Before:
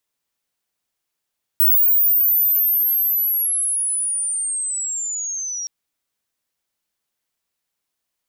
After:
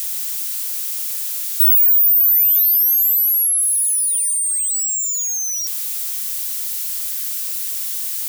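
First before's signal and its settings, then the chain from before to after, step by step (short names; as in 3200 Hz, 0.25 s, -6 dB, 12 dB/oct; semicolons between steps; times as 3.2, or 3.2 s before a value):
chirp linear 16000 Hz -> 5600 Hz -11 dBFS -> -24.5 dBFS 4.07 s
switching spikes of -20.5 dBFS; requantised 10-bit, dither triangular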